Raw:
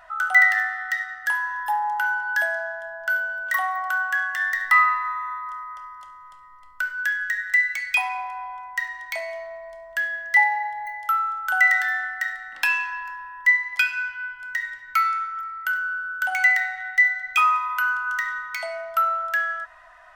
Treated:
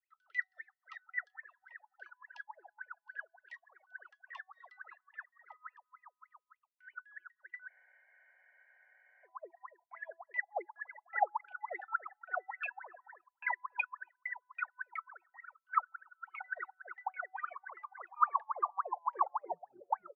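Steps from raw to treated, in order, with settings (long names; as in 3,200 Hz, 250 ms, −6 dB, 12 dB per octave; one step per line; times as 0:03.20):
turntable brake at the end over 2.85 s
reverb reduction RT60 0.57 s
noise gate −39 dBFS, range −21 dB
band-pass filter sweep 4,500 Hz → 920 Hz, 0:06.26–0:07.47
parametric band 180 Hz +12.5 dB 0.36 octaves
LFO wah 3.5 Hz 340–2,600 Hz, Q 21
high-shelf EQ 4,600 Hz −6.5 dB
three-band delay without the direct sound highs, lows, mids 130/790 ms, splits 580/1,800 Hz
reverb reduction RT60 1.1 s
frozen spectrum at 0:07.71, 1.54 s
level +11 dB
Ogg Vorbis 192 kbit/s 44,100 Hz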